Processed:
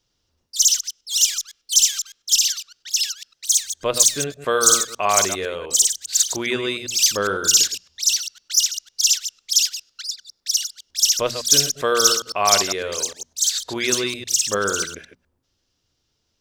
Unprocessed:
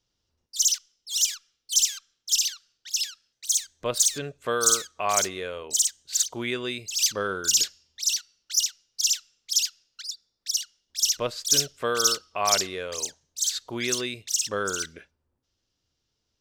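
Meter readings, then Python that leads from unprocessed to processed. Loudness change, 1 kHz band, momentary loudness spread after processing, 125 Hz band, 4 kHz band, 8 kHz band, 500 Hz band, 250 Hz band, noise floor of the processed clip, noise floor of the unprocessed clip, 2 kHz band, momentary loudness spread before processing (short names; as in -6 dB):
+6.5 dB, +6.5 dB, 10 LU, +5.0 dB, +6.5 dB, +6.5 dB, +6.5 dB, +5.5 dB, -72 dBFS, -79 dBFS, +6.5 dB, 11 LU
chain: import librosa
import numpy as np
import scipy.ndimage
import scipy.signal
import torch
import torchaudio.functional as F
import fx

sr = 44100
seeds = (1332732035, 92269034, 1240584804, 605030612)

y = fx.reverse_delay(x, sr, ms=101, wet_db=-9.5)
y = fx.hum_notches(y, sr, base_hz=60, count=4)
y = y * 10.0 ** (6.0 / 20.0)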